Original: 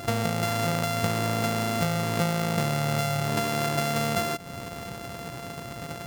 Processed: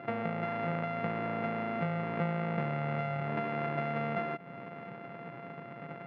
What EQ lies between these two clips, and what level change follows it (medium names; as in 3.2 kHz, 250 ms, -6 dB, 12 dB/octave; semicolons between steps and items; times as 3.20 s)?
elliptic band-pass 150–2300 Hz, stop band 70 dB; -6.0 dB